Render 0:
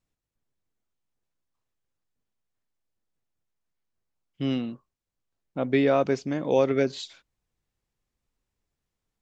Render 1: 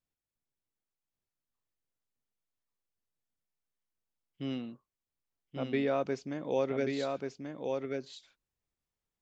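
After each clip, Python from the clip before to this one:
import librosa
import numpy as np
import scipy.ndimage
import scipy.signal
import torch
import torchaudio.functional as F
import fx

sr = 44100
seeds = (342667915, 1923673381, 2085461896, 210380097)

y = fx.low_shelf(x, sr, hz=150.0, db=-3.5)
y = y + 10.0 ** (-4.0 / 20.0) * np.pad(y, (int(1135 * sr / 1000.0), 0))[:len(y)]
y = F.gain(torch.from_numpy(y), -8.5).numpy()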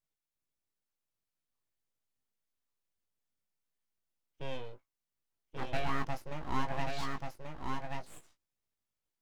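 y = np.abs(x)
y = fx.doubler(y, sr, ms=19.0, db=-6.5)
y = F.gain(torch.from_numpy(y), -1.0).numpy()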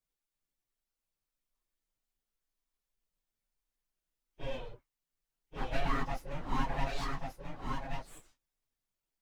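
y = fx.phase_scramble(x, sr, seeds[0], window_ms=50)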